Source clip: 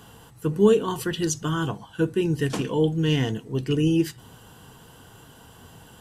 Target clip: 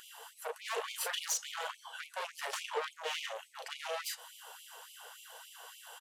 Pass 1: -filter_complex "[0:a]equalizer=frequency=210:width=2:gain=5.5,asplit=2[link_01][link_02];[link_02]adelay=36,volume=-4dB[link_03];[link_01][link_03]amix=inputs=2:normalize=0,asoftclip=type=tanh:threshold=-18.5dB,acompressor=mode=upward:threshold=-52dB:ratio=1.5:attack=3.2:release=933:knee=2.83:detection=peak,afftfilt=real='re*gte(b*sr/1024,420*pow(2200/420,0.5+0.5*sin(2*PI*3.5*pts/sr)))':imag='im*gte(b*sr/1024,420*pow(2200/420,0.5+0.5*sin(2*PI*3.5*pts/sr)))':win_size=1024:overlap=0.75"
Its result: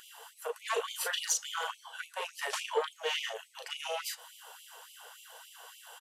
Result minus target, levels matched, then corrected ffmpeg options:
soft clipping: distortion −4 dB
-filter_complex "[0:a]equalizer=frequency=210:width=2:gain=5.5,asplit=2[link_01][link_02];[link_02]adelay=36,volume=-4dB[link_03];[link_01][link_03]amix=inputs=2:normalize=0,asoftclip=type=tanh:threshold=-27.5dB,acompressor=mode=upward:threshold=-52dB:ratio=1.5:attack=3.2:release=933:knee=2.83:detection=peak,afftfilt=real='re*gte(b*sr/1024,420*pow(2200/420,0.5+0.5*sin(2*PI*3.5*pts/sr)))':imag='im*gte(b*sr/1024,420*pow(2200/420,0.5+0.5*sin(2*PI*3.5*pts/sr)))':win_size=1024:overlap=0.75"

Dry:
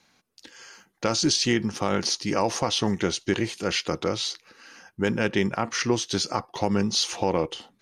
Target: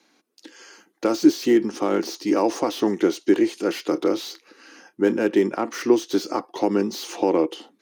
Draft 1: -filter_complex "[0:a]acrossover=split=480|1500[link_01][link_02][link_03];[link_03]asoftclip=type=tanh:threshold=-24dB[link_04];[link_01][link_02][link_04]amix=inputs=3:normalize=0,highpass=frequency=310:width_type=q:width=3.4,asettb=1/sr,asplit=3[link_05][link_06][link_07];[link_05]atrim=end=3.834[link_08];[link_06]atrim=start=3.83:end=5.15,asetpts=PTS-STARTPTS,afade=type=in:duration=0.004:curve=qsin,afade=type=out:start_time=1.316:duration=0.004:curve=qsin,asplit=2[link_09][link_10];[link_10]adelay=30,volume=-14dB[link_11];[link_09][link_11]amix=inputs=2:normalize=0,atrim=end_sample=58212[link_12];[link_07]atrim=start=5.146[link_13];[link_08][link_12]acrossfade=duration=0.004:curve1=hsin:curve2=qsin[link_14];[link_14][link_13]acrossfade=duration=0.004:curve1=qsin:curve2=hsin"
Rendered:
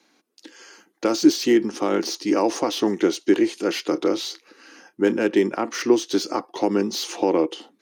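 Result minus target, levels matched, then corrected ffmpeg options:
soft clipping: distortion −6 dB
-filter_complex "[0:a]acrossover=split=480|1500[link_01][link_02][link_03];[link_03]asoftclip=type=tanh:threshold=-32.5dB[link_04];[link_01][link_02][link_04]amix=inputs=3:normalize=0,highpass=frequency=310:width_type=q:width=3.4,asettb=1/sr,asplit=3[link_05][link_06][link_07];[link_05]atrim=end=3.834[link_08];[link_06]atrim=start=3.83:end=5.15,asetpts=PTS-STARTPTS,afade=type=in:duration=0.004:curve=qsin,afade=type=out:start_time=1.316:duration=0.004:curve=qsin,asplit=2[link_09][link_10];[link_10]adelay=30,volume=-14dB[link_11];[link_09][link_11]amix=inputs=2:normalize=0,atrim=end_sample=58212[link_12];[link_07]atrim=start=5.146[link_13];[link_08][link_12]acrossfade=duration=0.004:curve1=hsin:curve2=qsin[link_14];[link_14][link_13]acrossfade=duration=0.004:curve1=qsin:curve2=hsin"

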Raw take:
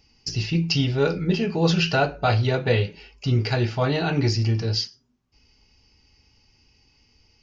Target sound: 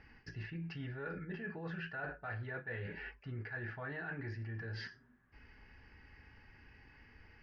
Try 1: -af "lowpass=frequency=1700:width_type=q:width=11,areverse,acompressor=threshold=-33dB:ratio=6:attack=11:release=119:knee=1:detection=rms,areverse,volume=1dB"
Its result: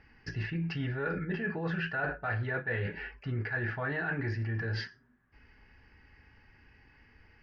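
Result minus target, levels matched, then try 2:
downward compressor: peak gain reduction −9.5 dB
-af "lowpass=frequency=1700:width_type=q:width=11,areverse,acompressor=threshold=-44.5dB:ratio=6:attack=11:release=119:knee=1:detection=rms,areverse,volume=1dB"

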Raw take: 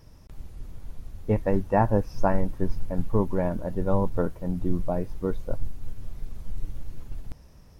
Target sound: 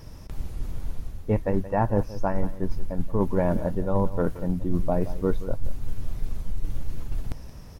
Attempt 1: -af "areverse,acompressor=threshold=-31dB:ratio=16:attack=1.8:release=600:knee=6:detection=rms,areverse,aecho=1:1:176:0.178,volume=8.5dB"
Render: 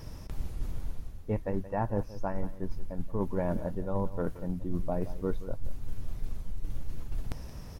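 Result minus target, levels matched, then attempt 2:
downward compressor: peak gain reduction +7.5 dB
-af "areverse,acompressor=threshold=-23dB:ratio=16:attack=1.8:release=600:knee=6:detection=rms,areverse,aecho=1:1:176:0.178,volume=8.5dB"

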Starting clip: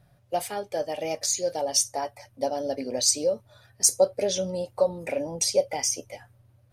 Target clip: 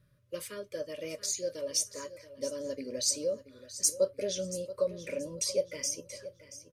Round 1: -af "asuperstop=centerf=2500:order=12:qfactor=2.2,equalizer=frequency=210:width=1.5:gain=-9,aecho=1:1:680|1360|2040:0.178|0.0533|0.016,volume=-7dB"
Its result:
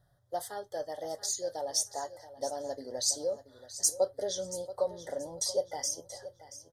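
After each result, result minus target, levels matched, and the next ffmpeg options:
1,000 Hz band +15.0 dB; 250 Hz band −5.0 dB
-af "asuperstop=centerf=780:order=12:qfactor=2.2,equalizer=frequency=210:width=1.5:gain=-9,aecho=1:1:680|1360|2040:0.178|0.0533|0.016,volume=-7dB"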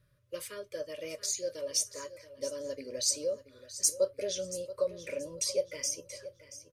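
250 Hz band −4.5 dB
-af "asuperstop=centerf=780:order=12:qfactor=2.2,aecho=1:1:680|1360|2040:0.178|0.0533|0.016,volume=-7dB"

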